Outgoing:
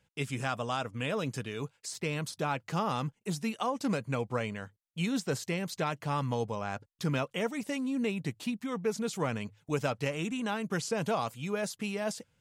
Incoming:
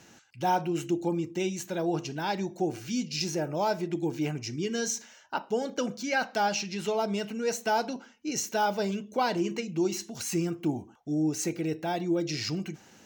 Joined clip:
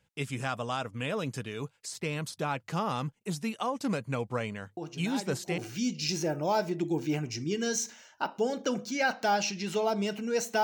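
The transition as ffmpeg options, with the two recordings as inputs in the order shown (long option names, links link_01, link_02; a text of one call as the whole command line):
ffmpeg -i cue0.wav -i cue1.wav -filter_complex "[1:a]asplit=2[link_01][link_02];[0:a]apad=whole_dur=10.63,atrim=end=10.63,atrim=end=5.582[link_03];[link_02]atrim=start=2.698:end=7.75[link_04];[link_01]atrim=start=1.89:end=2.7,asetpts=PTS-STARTPTS,volume=-9dB,afade=type=in:duration=0.004:curve=hsin,afade=type=out:start_time=0.806:duration=0.004:curve=hsin,adelay=210357S[link_05];[link_03][link_04]acrossfade=duration=0.004:curve1=hsin:curve2=hsin[link_06];[link_06][link_05]amix=inputs=2:normalize=0" out.wav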